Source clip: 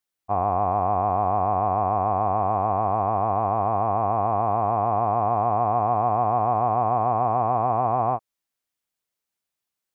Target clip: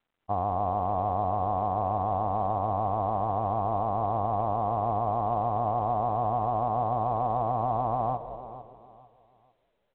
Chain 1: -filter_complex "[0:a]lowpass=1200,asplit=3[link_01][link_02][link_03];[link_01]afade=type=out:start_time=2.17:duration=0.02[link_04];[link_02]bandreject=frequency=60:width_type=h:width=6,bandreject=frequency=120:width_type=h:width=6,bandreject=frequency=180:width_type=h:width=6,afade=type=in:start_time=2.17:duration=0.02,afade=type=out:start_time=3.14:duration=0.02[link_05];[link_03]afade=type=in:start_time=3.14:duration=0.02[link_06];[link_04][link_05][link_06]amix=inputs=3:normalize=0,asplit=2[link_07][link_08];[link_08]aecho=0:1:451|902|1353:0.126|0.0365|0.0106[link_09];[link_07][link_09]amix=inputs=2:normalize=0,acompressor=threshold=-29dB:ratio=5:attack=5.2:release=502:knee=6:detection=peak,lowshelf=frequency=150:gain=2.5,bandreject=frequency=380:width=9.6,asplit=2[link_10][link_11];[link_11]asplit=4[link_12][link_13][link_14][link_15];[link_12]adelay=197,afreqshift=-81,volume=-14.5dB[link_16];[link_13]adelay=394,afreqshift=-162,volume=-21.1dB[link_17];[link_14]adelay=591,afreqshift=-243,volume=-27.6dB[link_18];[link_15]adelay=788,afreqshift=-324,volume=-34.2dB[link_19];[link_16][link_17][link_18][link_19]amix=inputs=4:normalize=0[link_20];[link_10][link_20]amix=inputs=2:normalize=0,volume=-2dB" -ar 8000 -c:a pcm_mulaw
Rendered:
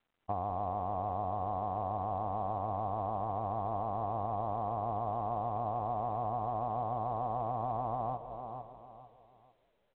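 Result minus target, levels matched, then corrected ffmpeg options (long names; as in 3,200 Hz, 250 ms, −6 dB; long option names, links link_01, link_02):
downward compressor: peak gain reduction +8 dB
-filter_complex "[0:a]lowpass=1200,asplit=3[link_01][link_02][link_03];[link_01]afade=type=out:start_time=2.17:duration=0.02[link_04];[link_02]bandreject=frequency=60:width_type=h:width=6,bandreject=frequency=120:width_type=h:width=6,bandreject=frequency=180:width_type=h:width=6,afade=type=in:start_time=2.17:duration=0.02,afade=type=out:start_time=3.14:duration=0.02[link_05];[link_03]afade=type=in:start_time=3.14:duration=0.02[link_06];[link_04][link_05][link_06]amix=inputs=3:normalize=0,asplit=2[link_07][link_08];[link_08]aecho=0:1:451|902|1353:0.126|0.0365|0.0106[link_09];[link_07][link_09]amix=inputs=2:normalize=0,acompressor=threshold=-19dB:ratio=5:attack=5.2:release=502:knee=6:detection=peak,lowshelf=frequency=150:gain=2.5,bandreject=frequency=380:width=9.6,asplit=2[link_10][link_11];[link_11]asplit=4[link_12][link_13][link_14][link_15];[link_12]adelay=197,afreqshift=-81,volume=-14.5dB[link_16];[link_13]adelay=394,afreqshift=-162,volume=-21.1dB[link_17];[link_14]adelay=591,afreqshift=-243,volume=-27.6dB[link_18];[link_15]adelay=788,afreqshift=-324,volume=-34.2dB[link_19];[link_16][link_17][link_18][link_19]amix=inputs=4:normalize=0[link_20];[link_10][link_20]amix=inputs=2:normalize=0,volume=-2dB" -ar 8000 -c:a pcm_mulaw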